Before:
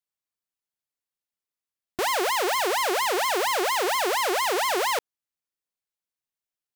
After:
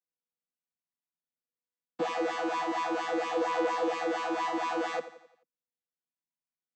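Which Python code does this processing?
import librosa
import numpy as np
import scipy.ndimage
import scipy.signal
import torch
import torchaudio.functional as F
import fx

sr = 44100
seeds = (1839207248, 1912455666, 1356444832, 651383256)

y = fx.chord_vocoder(x, sr, chord='bare fifth', root=52)
y = fx.echo_feedback(y, sr, ms=87, feedback_pct=48, wet_db=-14)
y = y * 10.0 ** (-5.5 / 20.0)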